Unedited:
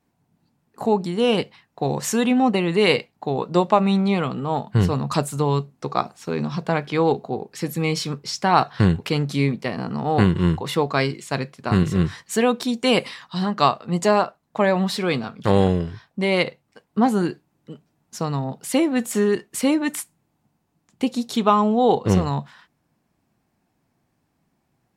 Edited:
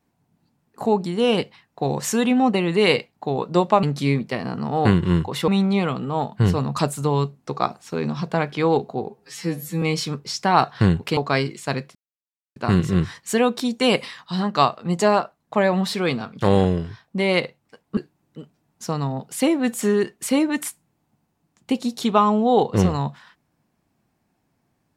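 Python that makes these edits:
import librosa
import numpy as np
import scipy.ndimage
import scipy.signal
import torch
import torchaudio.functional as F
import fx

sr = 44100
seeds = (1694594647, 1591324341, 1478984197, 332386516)

y = fx.edit(x, sr, fx.stretch_span(start_s=7.45, length_s=0.36, factor=2.0),
    fx.move(start_s=9.16, length_s=1.65, to_s=3.83),
    fx.insert_silence(at_s=11.59, length_s=0.61),
    fx.cut(start_s=17.0, length_s=0.29), tone=tone)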